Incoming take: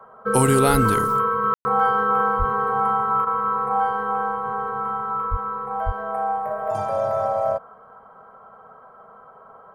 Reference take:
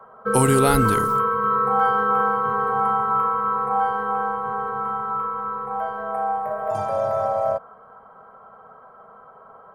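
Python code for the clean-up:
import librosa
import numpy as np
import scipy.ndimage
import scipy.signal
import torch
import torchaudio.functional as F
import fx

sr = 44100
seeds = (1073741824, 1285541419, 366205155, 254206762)

y = fx.highpass(x, sr, hz=140.0, slope=24, at=(2.38, 2.5), fade=0.02)
y = fx.highpass(y, sr, hz=140.0, slope=24, at=(5.3, 5.42), fade=0.02)
y = fx.highpass(y, sr, hz=140.0, slope=24, at=(5.85, 5.97), fade=0.02)
y = fx.fix_ambience(y, sr, seeds[0], print_start_s=7.74, print_end_s=8.24, start_s=1.54, end_s=1.65)
y = fx.fix_interpolate(y, sr, at_s=(3.25,), length_ms=17.0)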